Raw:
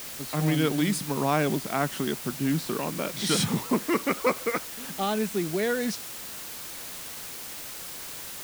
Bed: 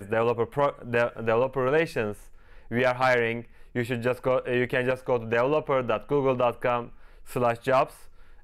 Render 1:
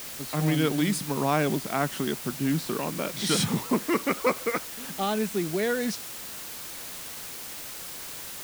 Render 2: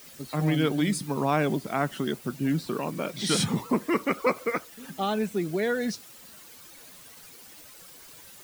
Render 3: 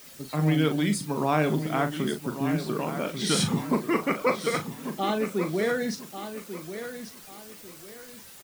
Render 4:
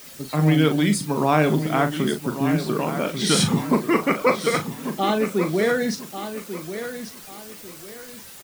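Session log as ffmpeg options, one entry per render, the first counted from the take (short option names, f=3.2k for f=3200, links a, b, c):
-af anull
-af "afftdn=nr=12:nf=-39"
-filter_complex "[0:a]asplit=2[a][b];[b]adelay=39,volume=-9dB[c];[a][c]amix=inputs=2:normalize=0,aecho=1:1:1142|2284|3426:0.299|0.0896|0.0269"
-af "volume=5.5dB"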